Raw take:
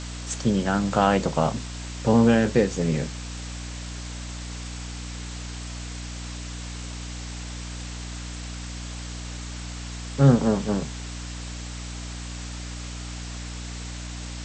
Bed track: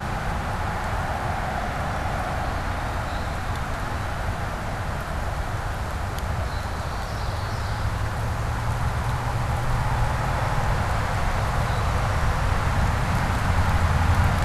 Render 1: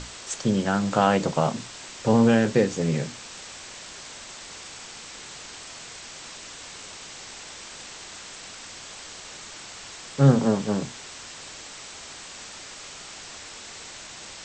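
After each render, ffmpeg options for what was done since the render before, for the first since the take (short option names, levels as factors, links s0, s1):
-af "bandreject=f=60:t=h:w=6,bandreject=f=120:t=h:w=6,bandreject=f=180:t=h:w=6,bandreject=f=240:t=h:w=6,bandreject=f=300:t=h:w=6"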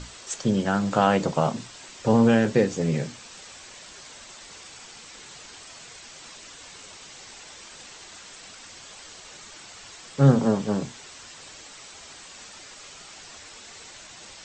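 -af "afftdn=nr=6:nf=-42"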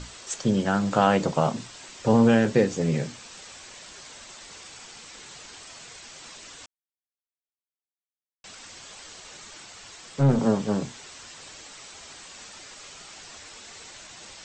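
-filter_complex "[0:a]asettb=1/sr,asplit=3[s0][s1][s2];[s0]atrim=end=9.644[s3];[s1]atrim=start=9.64:end=10.4,asetpts=PTS-STARTPTS,afade=t=in:d=0.004:c=qsin,afade=t=out:st=0.756:d=0.004:c=qsin,aeval=exprs='(tanh(5.01*val(0)+0.3)-tanh(0.3))/5.01':c=same[s4];[s2]atrim=start=10.396[s5];[s3][s4]acrossfade=d=0.004:c1=hsin:c2=qsin[s6];[s6][s5]acrossfade=d=0.004:c1=qsin:c2=hsin,asplit=3[s7][s8][s9];[s7]atrim=end=6.66,asetpts=PTS-STARTPTS,afade=t=out:st=6.656:d=0.004:c=hsin[s10];[s8]atrim=start=6.66:end=8.44,asetpts=PTS-STARTPTS,volume=0[s11];[s9]atrim=start=8.44,asetpts=PTS-STARTPTS,afade=t=in:d=0.004:c=hsin[s12];[s10][s11][s12]concat=n=3:v=0:a=1"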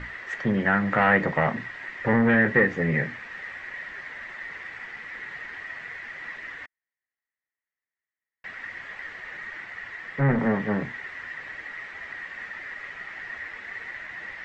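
-af "asoftclip=type=tanh:threshold=0.168,lowpass=f=1900:t=q:w=13"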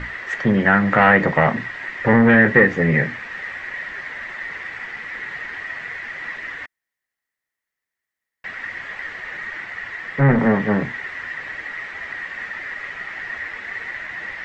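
-af "volume=2.24,alimiter=limit=0.794:level=0:latency=1"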